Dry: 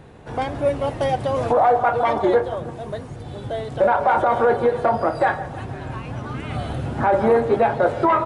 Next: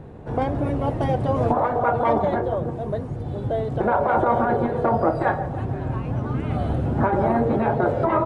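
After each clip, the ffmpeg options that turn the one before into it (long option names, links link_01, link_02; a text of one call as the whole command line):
ffmpeg -i in.wav -af "tiltshelf=frequency=1300:gain=8,afftfilt=real='re*lt(hypot(re,im),1.58)':imag='im*lt(hypot(re,im),1.58)':win_size=1024:overlap=0.75,volume=-2.5dB" out.wav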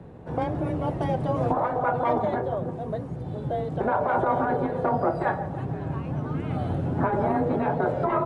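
ffmpeg -i in.wav -af "afreqshift=21,volume=-4dB" out.wav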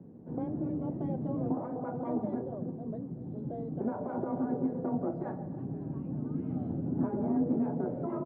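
ffmpeg -i in.wav -af "bandpass=frequency=240:width_type=q:width=2.2:csg=0,aecho=1:1:251:0.0944" out.wav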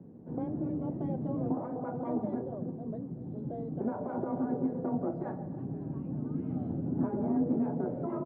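ffmpeg -i in.wav -af anull out.wav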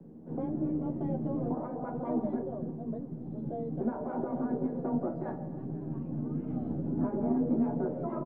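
ffmpeg -i in.wav -filter_complex "[0:a]acrossover=split=130|570[link_01][link_02][link_03];[link_01]aeval=exprs='max(val(0),0)':channel_layout=same[link_04];[link_04][link_02][link_03]amix=inputs=3:normalize=0,asplit=2[link_05][link_06];[link_06]adelay=13,volume=-5.5dB[link_07];[link_05][link_07]amix=inputs=2:normalize=0" out.wav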